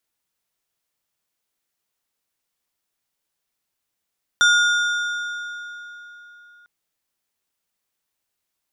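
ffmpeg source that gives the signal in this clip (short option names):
-f lavfi -i "aevalsrc='0.251*pow(10,-3*t/3.7)*sin(2*PI*1430*t)+0.126*pow(10,-3*t/2.811)*sin(2*PI*3575*t)+0.0631*pow(10,-3*t/2.441)*sin(2*PI*5720*t)+0.0316*pow(10,-3*t/2.283)*sin(2*PI*7150*t)+0.0158*pow(10,-3*t/2.11)*sin(2*PI*9295*t)':d=2.25:s=44100"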